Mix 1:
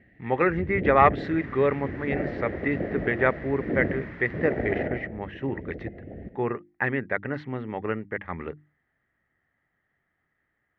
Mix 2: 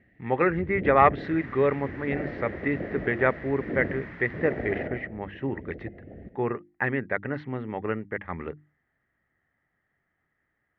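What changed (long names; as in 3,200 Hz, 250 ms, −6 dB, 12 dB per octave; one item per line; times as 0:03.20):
speech: add high-frequency loss of the air 110 metres
first sound −4.0 dB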